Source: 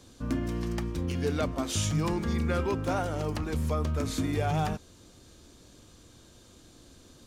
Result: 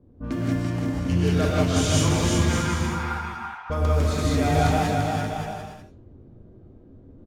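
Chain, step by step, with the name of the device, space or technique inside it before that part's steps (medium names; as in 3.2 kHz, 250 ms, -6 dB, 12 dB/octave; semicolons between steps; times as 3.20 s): 2.40–3.70 s: elliptic high-pass 890 Hz, stop band 40 dB; cassette deck with a dynamic noise filter (white noise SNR 30 dB; level-controlled noise filter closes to 350 Hz, open at -25.5 dBFS); 0.62–1.05 s: peaking EQ 3.8 kHz -15 dB 2.8 oct; bouncing-ball echo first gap 340 ms, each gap 0.7×, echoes 5; gated-style reverb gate 220 ms rising, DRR -5 dB; trim +1 dB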